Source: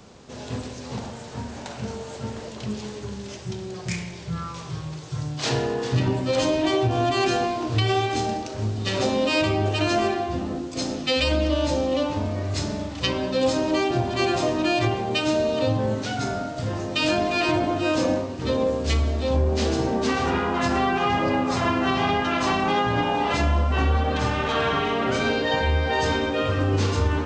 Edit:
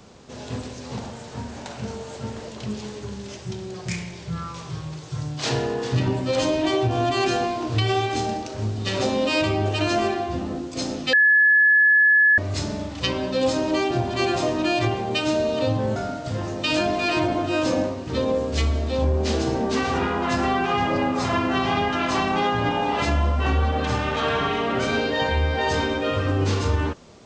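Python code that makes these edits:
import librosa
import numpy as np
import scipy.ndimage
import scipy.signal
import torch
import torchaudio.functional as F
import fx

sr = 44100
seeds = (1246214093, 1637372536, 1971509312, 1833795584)

y = fx.edit(x, sr, fx.bleep(start_s=11.13, length_s=1.25, hz=1710.0, db=-12.5),
    fx.cut(start_s=15.96, length_s=0.32), tone=tone)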